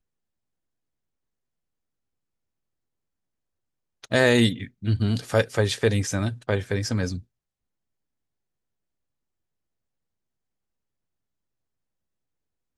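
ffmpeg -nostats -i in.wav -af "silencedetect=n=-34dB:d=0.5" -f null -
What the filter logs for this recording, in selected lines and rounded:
silence_start: 0.00
silence_end: 4.04 | silence_duration: 4.04
silence_start: 7.19
silence_end: 12.77 | silence_duration: 5.58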